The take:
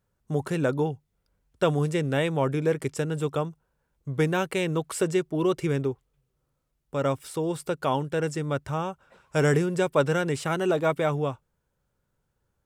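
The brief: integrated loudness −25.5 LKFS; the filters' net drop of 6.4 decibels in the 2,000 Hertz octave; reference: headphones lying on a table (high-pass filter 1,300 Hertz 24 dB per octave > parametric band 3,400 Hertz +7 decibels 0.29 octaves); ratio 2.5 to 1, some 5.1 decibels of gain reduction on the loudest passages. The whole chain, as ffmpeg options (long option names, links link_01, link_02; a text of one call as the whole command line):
ffmpeg -i in.wav -af "equalizer=frequency=2000:width_type=o:gain=-8.5,acompressor=threshold=-26dB:ratio=2.5,highpass=frequency=1300:width=0.5412,highpass=frequency=1300:width=1.3066,equalizer=frequency=3400:width_type=o:width=0.29:gain=7,volume=16.5dB" out.wav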